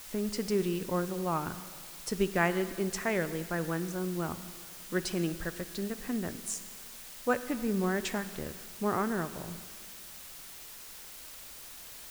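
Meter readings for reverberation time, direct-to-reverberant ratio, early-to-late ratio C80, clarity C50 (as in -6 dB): 1.8 s, 12.0 dB, 14.0 dB, 13.5 dB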